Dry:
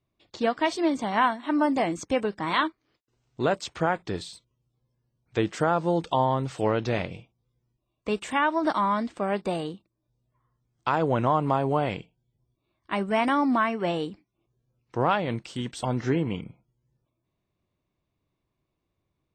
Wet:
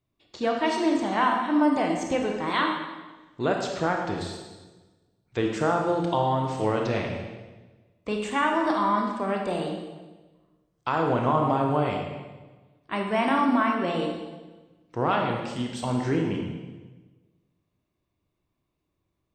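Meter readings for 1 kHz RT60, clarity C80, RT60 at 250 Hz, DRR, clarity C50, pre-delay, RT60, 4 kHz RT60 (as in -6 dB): 1.2 s, 5.0 dB, 1.4 s, 1.0 dB, 3.0 dB, 23 ms, 1.2 s, 1.1 s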